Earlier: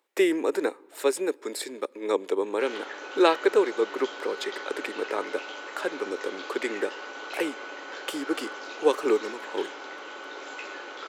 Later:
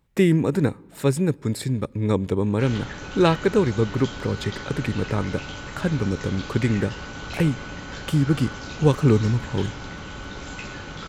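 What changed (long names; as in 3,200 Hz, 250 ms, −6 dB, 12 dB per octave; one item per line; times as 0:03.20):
background: add high-shelf EQ 4,800 Hz +10.5 dB
master: remove Butterworth high-pass 340 Hz 36 dB per octave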